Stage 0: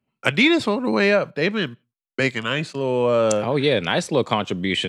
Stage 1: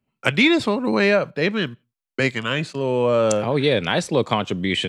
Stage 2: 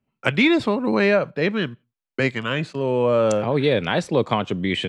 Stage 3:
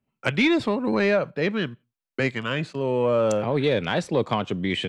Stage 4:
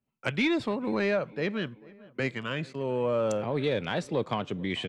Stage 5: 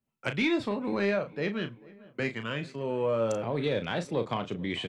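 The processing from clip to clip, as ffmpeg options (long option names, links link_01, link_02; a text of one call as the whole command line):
ffmpeg -i in.wav -af "lowshelf=frequency=67:gain=8" out.wav
ffmpeg -i in.wav -af "highshelf=frequency=4300:gain=-9.5" out.wav
ffmpeg -i in.wav -af "acontrast=46,volume=-8dB" out.wav
ffmpeg -i in.wav -filter_complex "[0:a]asplit=2[link_01][link_02];[link_02]adelay=443,lowpass=frequency=2100:poles=1,volume=-22.5dB,asplit=2[link_03][link_04];[link_04]adelay=443,lowpass=frequency=2100:poles=1,volume=0.52,asplit=2[link_05][link_06];[link_06]adelay=443,lowpass=frequency=2100:poles=1,volume=0.52,asplit=2[link_07][link_08];[link_08]adelay=443,lowpass=frequency=2100:poles=1,volume=0.52[link_09];[link_01][link_03][link_05][link_07][link_09]amix=inputs=5:normalize=0,volume=-6dB" out.wav
ffmpeg -i in.wav -filter_complex "[0:a]asplit=2[link_01][link_02];[link_02]adelay=35,volume=-9dB[link_03];[link_01][link_03]amix=inputs=2:normalize=0,volume=-1.5dB" out.wav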